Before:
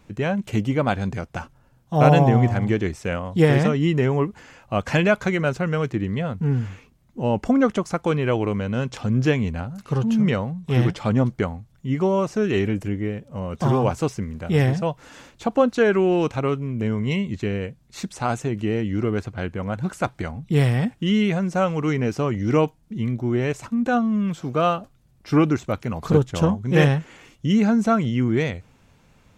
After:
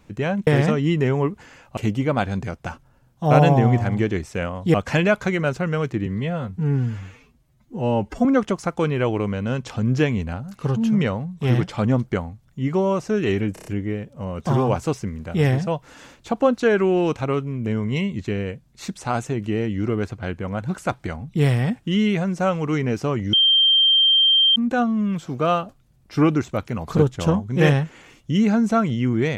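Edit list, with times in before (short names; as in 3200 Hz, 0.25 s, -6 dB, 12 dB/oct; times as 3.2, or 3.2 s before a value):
3.44–4.74 move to 0.47
6.06–7.52 stretch 1.5×
12.81 stutter 0.03 s, 5 plays
22.48–23.71 bleep 3160 Hz -12.5 dBFS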